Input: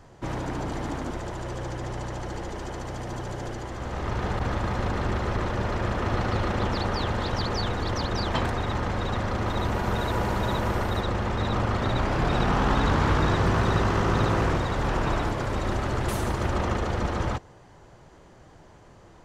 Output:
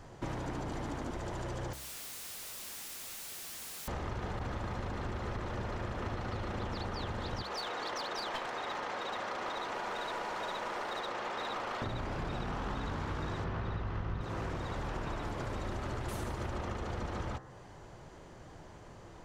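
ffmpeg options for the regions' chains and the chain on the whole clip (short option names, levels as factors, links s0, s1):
-filter_complex "[0:a]asettb=1/sr,asplit=3[s0][s1][s2];[s0]atrim=end=1.734[s3];[s1]atrim=start=1.73:end=3.88,asetpts=PTS-STARTPTS,afade=t=in:d=0.004:c=qsin,afade=t=out:st=2.146:d=0.004:c=qsin,aeval=exprs='val(0)+0.0112*sin(2*PI*4200*n/s)':c=same,highpass=370,lowpass=5300,aeval=exprs='(mod(100*val(0)+1,2)-1)/100':c=same[s4];[s2]atrim=start=3.876[s5];[s3][s4]acrossfade=d=0.004:c1=hsin:c2=qsin[s6];[s6][s5]acrossfade=d=0.004:c1=qsin:c2=hsin,asettb=1/sr,asplit=3[s7][s8][s9];[s7]atrim=end=7.424[s10];[s8]atrim=start=7.42:end=11.82,asetpts=PTS-STARTPTS,afade=t=in:d=0.004:c=qsin,afade=t=out:st=4.396:d=0.004:c=qsin,highpass=520,lowpass=7300,aeval=exprs='clip(val(0),-1,0.0376)':c=same[s11];[s9]atrim=start=11.816[s12];[s10][s11]acrossfade=d=0.004:c1=hsin:c2=qsin[s13];[s13][s12]acrossfade=d=0.004:c1=qsin:c2=hsin,asettb=1/sr,asplit=3[s14][s15][s16];[s14]atrim=end=13.444[s17];[s15]atrim=start=13.44:end=14.21,asetpts=PTS-STARTPTS,afade=t=in:d=0.004:c=qsin,afade=t=out:st=0.766:d=0.004:c=qsin,lowpass=3700,asubboost=boost=9.5:cutoff=170[s18];[s16]atrim=start=14.206[s19];[s17][s18]acrossfade=d=0.004:c1=hsin:c2=qsin[s20];[s20][s19]acrossfade=d=0.004:c1=qsin:c2=hsin,bandreject=f=65.17:t=h:w=4,bandreject=f=130.34:t=h:w=4,bandreject=f=195.51:t=h:w=4,bandreject=f=260.68:t=h:w=4,bandreject=f=325.85:t=h:w=4,bandreject=f=391.02:t=h:w=4,bandreject=f=456.19:t=h:w=4,bandreject=f=521.36:t=h:w=4,bandreject=f=586.53:t=h:w=4,bandreject=f=651.7:t=h:w=4,bandreject=f=716.87:t=h:w=4,bandreject=f=782.04:t=h:w=4,bandreject=f=847.21:t=h:w=4,bandreject=f=912.38:t=h:w=4,bandreject=f=977.55:t=h:w=4,bandreject=f=1042.72:t=h:w=4,bandreject=f=1107.89:t=h:w=4,bandreject=f=1173.06:t=h:w=4,bandreject=f=1238.23:t=h:w=4,bandreject=f=1303.4:t=h:w=4,bandreject=f=1368.57:t=h:w=4,bandreject=f=1433.74:t=h:w=4,bandreject=f=1498.91:t=h:w=4,bandreject=f=1564.08:t=h:w=4,bandreject=f=1629.25:t=h:w=4,bandreject=f=1694.42:t=h:w=4,bandreject=f=1759.59:t=h:w=4,bandreject=f=1824.76:t=h:w=4,bandreject=f=1889.93:t=h:w=4,bandreject=f=1955.1:t=h:w=4,acompressor=threshold=0.0178:ratio=6"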